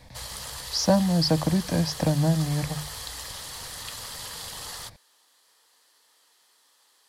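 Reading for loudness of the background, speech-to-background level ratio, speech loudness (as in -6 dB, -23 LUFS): -36.0 LUFS, 11.5 dB, -24.5 LUFS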